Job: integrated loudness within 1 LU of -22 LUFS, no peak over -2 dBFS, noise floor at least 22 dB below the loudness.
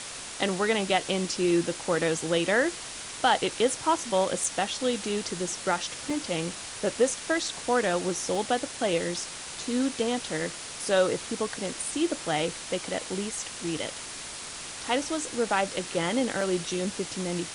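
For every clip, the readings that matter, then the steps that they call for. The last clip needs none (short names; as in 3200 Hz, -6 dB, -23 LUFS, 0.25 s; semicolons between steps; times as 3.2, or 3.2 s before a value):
dropouts 4; longest dropout 2.7 ms; noise floor -40 dBFS; noise floor target -51 dBFS; loudness -28.5 LUFS; peak -10.0 dBFS; loudness target -22.0 LUFS
-> interpolate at 4.44/6.1/8.35/16.41, 2.7 ms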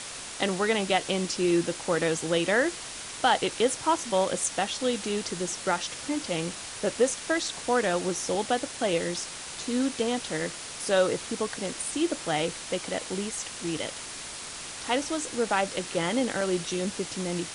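dropouts 0; noise floor -40 dBFS; noise floor target -51 dBFS
-> noise print and reduce 11 dB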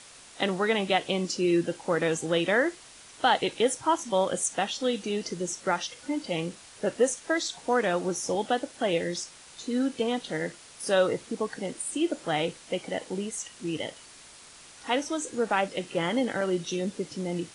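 noise floor -50 dBFS; noise floor target -51 dBFS
-> noise print and reduce 6 dB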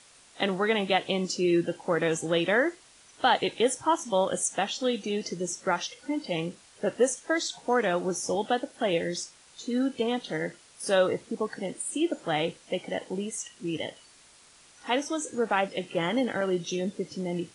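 noise floor -56 dBFS; loudness -28.5 LUFS; peak -10.5 dBFS; loudness target -22.0 LUFS
-> gain +6.5 dB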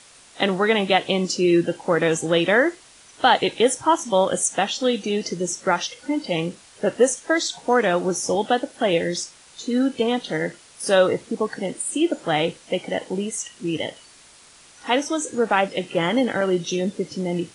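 loudness -22.0 LUFS; peak -4.0 dBFS; noise floor -50 dBFS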